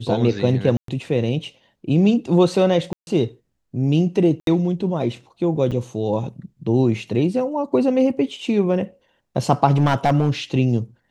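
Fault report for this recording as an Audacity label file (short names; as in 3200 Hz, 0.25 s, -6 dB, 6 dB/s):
0.770000	0.880000	gap 0.113 s
2.930000	3.070000	gap 0.141 s
4.400000	4.470000	gap 72 ms
5.710000	5.720000	gap 6.6 ms
9.710000	10.300000	clipped -11.5 dBFS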